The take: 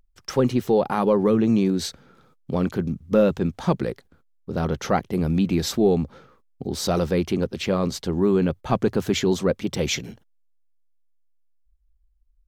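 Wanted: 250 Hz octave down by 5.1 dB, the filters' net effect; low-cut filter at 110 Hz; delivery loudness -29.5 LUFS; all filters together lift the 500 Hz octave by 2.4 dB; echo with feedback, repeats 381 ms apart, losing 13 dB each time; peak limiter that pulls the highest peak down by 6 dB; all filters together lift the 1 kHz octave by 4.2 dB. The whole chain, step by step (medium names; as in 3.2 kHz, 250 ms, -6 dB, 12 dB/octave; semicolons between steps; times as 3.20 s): high-pass 110 Hz; peaking EQ 250 Hz -8.5 dB; peaking EQ 500 Hz +4.5 dB; peaking EQ 1 kHz +4.5 dB; peak limiter -10.5 dBFS; feedback delay 381 ms, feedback 22%, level -13 dB; trim -5.5 dB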